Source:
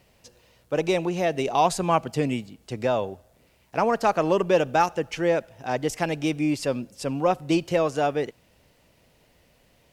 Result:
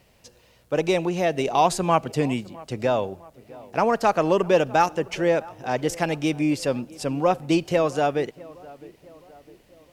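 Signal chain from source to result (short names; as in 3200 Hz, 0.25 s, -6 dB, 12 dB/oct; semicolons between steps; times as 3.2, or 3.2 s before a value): tape echo 0.658 s, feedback 56%, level -20 dB, low-pass 1700 Hz; gain +1.5 dB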